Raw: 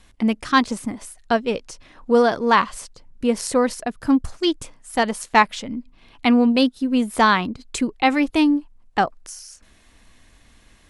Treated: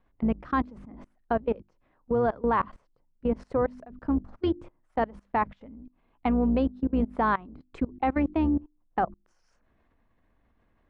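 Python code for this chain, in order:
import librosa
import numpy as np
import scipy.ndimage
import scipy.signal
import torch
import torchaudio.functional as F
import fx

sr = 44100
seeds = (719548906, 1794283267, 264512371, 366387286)

y = fx.octave_divider(x, sr, octaves=2, level_db=-4.0)
y = scipy.signal.sosfilt(scipy.signal.butter(2, 1200.0, 'lowpass', fs=sr, output='sos'), y)
y = fx.low_shelf(y, sr, hz=110.0, db=-5.0)
y = fx.hum_notches(y, sr, base_hz=50, count=7)
y = fx.level_steps(y, sr, step_db=22)
y = F.gain(torch.from_numpy(y), -1.0).numpy()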